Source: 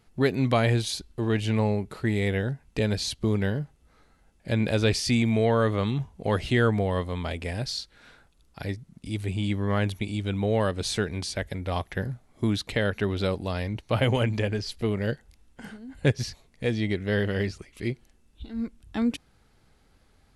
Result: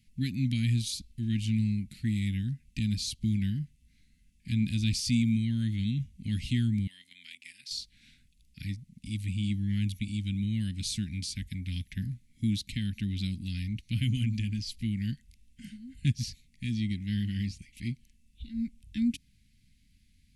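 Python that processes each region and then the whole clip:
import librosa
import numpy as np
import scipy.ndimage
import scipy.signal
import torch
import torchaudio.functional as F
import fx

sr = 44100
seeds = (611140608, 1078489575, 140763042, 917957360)

y = fx.chain(x, sr, fx.highpass(hz=890.0, slope=12),
    fx.level_steps(step_db=10), at=(6.87, 7.71))
y = scipy.signal.sosfilt(scipy.signal.ellip(3, 1.0, 40, [240.0, 2200.0], 'bandstop', fs=sr, output='sos'), y)
y = fx.dynamic_eq(y, sr, hz=2000.0, q=1.1, threshold_db=-46.0, ratio=4.0, max_db=-8)
y = F.gain(torch.from_numpy(y), -1.5).numpy()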